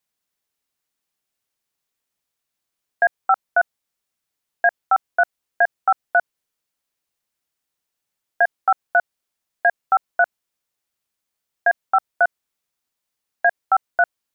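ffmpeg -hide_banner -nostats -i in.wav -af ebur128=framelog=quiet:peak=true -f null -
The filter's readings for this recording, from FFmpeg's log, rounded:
Integrated loudness:
  I:         -21.1 LUFS
  Threshold: -31.1 LUFS
Loudness range:
  LRA:         3.7 LU
  Threshold: -44.0 LUFS
  LRA low:   -26.0 LUFS
  LRA high:  -22.4 LUFS
True peak:
  Peak:       -7.4 dBFS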